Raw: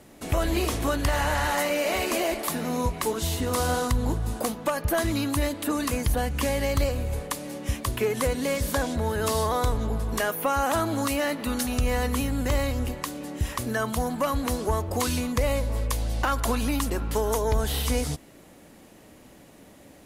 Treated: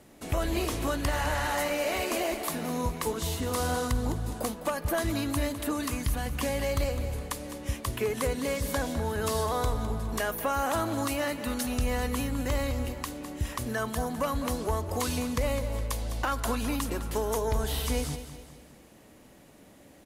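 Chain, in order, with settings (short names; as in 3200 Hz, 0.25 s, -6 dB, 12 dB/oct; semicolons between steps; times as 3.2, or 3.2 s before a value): 5.86–6.26 bell 530 Hz -9.5 dB 0.77 oct; feedback echo 0.207 s, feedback 44%, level -12 dB; gain -4 dB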